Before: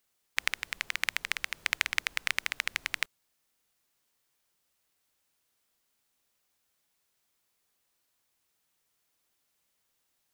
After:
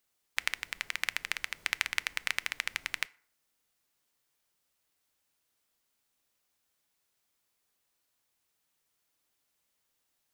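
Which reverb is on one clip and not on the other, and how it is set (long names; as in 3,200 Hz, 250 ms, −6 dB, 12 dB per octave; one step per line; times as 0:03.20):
feedback delay network reverb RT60 0.55 s, low-frequency decay 1.05×, high-frequency decay 0.6×, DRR 18.5 dB
level −2 dB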